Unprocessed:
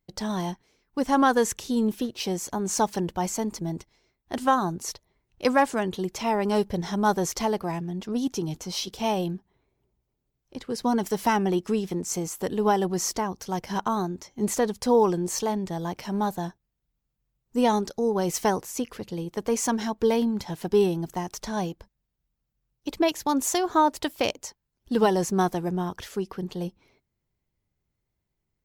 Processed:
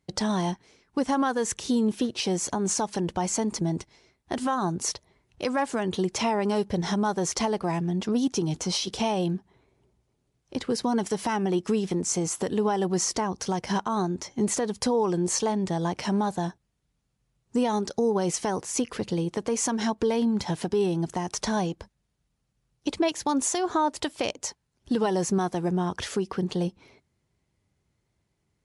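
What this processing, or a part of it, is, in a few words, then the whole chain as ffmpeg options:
podcast mastering chain: -af "highpass=60,acompressor=threshold=0.02:ratio=2,alimiter=limit=0.0631:level=0:latency=1:release=134,volume=2.66" -ar 24000 -c:a libmp3lame -b:a 96k

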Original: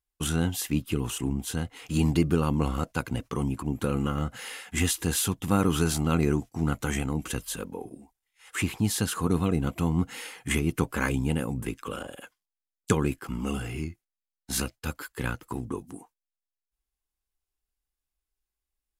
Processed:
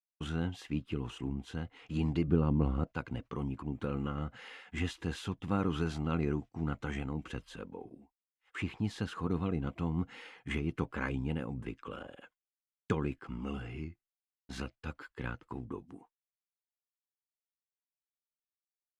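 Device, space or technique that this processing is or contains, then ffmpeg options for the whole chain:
hearing-loss simulation: -filter_complex "[0:a]lowpass=3200,agate=range=0.0224:threshold=0.00447:ratio=3:detection=peak,asettb=1/sr,asplit=3[s0][s1][s2];[s0]atrim=end=2.284[s3];[s1]atrim=start=2.28:end=2.87,asetpts=PTS-STARTPTS,afade=t=in:d=0.004:c=qsin,afade=t=out:st=0.586:d=0.004:c=qsin,tiltshelf=f=810:g=6[s4];[s2]atrim=start=2.866[s5];[s3][s4]acrossfade=d=0.004:c1=hsin:c2=qsin[s6];[s6][s5]acrossfade=d=0.004:c1=qsin:c2=hsin,volume=0.398"

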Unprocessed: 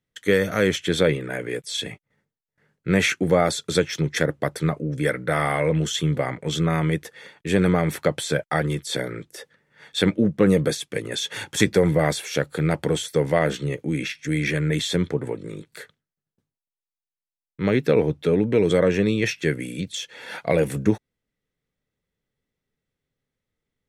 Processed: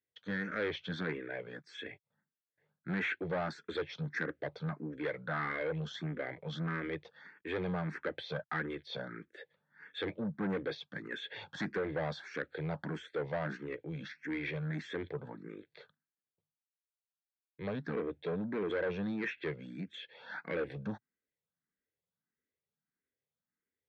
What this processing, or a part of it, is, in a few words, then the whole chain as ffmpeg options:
barber-pole phaser into a guitar amplifier: -filter_complex "[0:a]asplit=2[s0][s1];[s1]afreqshift=1.6[s2];[s0][s2]amix=inputs=2:normalize=1,asoftclip=type=tanh:threshold=0.0891,highpass=100,equalizer=f=120:t=q:w=4:g=-6,equalizer=f=1600:t=q:w=4:g=8,equalizer=f=2900:t=q:w=4:g=-5,lowpass=f=3900:w=0.5412,lowpass=f=3900:w=1.3066,volume=0.355"

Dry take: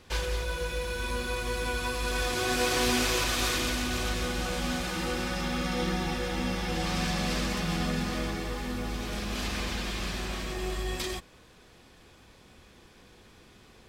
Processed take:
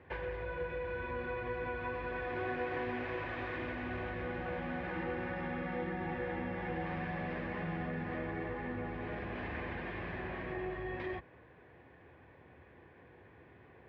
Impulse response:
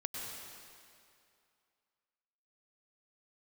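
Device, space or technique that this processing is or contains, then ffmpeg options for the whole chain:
bass amplifier: -af "acompressor=threshold=0.0282:ratio=6,highpass=f=73:w=0.5412,highpass=f=73:w=1.3066,equalizer=f=210:t=q:w=4:g=-10,equalizer=f=1300:t=q:w=4:g=-9,equalizer=f=1800:t=q:w=4:g=4,lowpass=f=2000:w=0.5412,lowpass=f=2000:w=1.3066"

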